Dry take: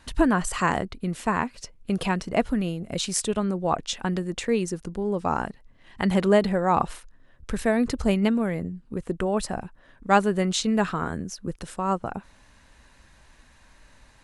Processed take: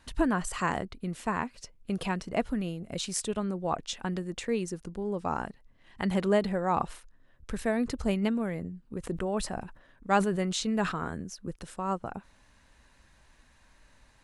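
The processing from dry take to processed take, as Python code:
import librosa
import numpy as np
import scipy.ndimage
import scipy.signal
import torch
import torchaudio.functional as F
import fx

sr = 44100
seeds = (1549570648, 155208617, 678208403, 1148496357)

y = fx.sustainer(x, sr, db_per_s=93.0, at=(9.03, 11.2), fade=0.02)
y = y * 10.0 ** (-6.0 / 20.0)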